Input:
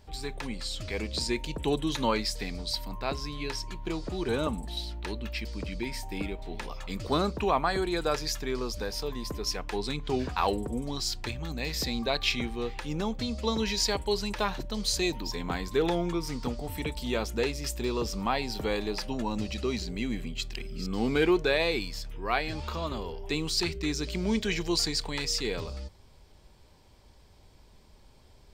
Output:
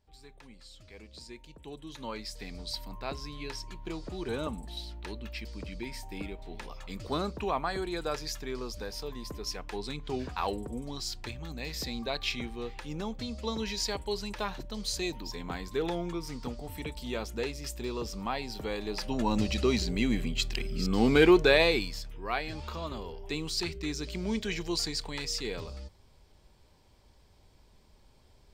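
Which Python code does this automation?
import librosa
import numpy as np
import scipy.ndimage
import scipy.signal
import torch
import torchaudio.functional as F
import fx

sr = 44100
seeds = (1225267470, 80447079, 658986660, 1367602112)

y = fx.gain(x, sr, db=fx.line((1.71, -17.0), (2.63, -5.0), (18.78, -5.0), (19.32, 4.0), (21.6, 4.0), (22.15, -4.0)))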